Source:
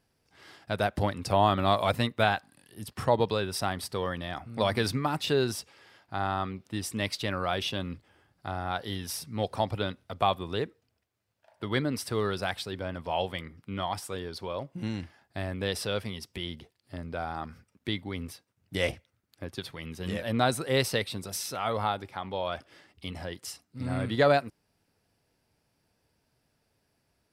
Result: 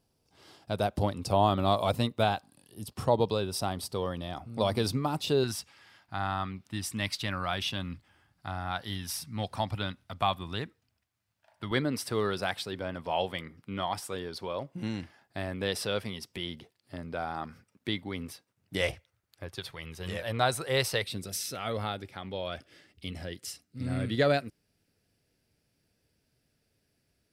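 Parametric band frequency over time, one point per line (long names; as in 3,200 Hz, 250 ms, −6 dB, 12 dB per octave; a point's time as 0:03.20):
parametric band −10.5 dB 0.93 octaves
1,800 Hz
from 0:05.44 450 Hz
from 0:11.71 61 Hz
from 0:18.81 240 Hz
from 0:21.03 940 Hz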